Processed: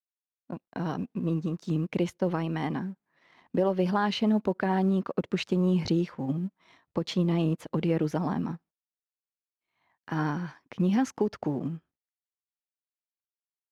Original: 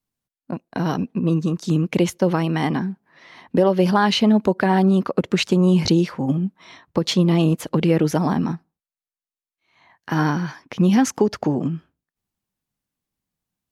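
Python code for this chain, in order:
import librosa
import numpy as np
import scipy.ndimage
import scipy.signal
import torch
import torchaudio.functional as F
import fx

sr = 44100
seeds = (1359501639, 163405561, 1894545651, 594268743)

y = fx.law_mismatch(x, sr, coded='A')
y = fx.high_shelf(y, sr, hz=5500.0, db=-11.5)
y = F.gain(torch.from_numpy(y), -8.5).numpy()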